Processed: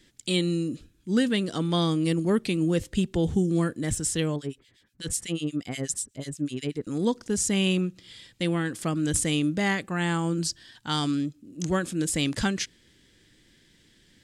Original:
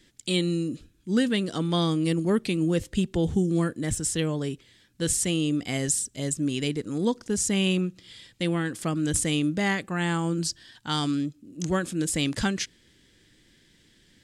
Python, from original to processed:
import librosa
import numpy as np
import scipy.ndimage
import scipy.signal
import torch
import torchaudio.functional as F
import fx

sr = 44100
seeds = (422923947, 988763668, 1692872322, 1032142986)

y = fx.harmonic_tremolo(x, sr, hz=8.2, depth_pct=100, crossover_hz=1700.0, at=(4.36, 6.87))